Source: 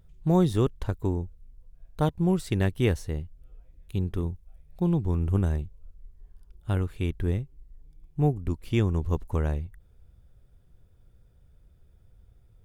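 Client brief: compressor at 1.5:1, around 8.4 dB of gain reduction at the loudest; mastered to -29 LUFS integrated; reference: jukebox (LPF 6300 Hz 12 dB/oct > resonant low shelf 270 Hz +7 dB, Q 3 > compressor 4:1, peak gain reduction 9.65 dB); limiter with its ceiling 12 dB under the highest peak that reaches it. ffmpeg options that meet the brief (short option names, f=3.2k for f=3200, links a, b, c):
-af "acompressor=threshold=-42dB:ratio=1.5,alimiter=level_in=6dB:limit=-24dB:level=0:latency=1,volume=-6dB,lowpass=6.3k,lowshelf=f=270:t=q:w=3:g=7,acompressor=threshold=-35dB:ratio=4,volume=12.5dB"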